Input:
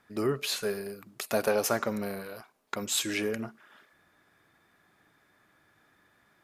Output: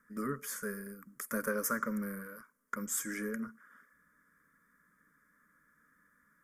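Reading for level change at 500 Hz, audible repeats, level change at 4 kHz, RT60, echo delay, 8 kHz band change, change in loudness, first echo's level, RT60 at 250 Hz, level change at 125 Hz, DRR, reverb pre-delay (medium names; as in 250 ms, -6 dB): -10.5 dB, no echo, -19.5 dB, no reverb, no echo, -4.5 dB, -6.5 dB, no echo, no reverb, -6.5 dB, no reverb, no reverb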